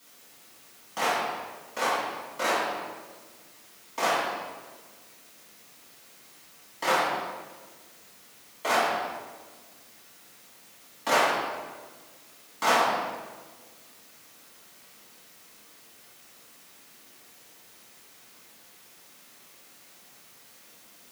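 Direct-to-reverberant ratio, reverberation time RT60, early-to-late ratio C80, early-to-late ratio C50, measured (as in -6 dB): -12.0 dB, 1.5 s, 1.0 dB, -1.5 dB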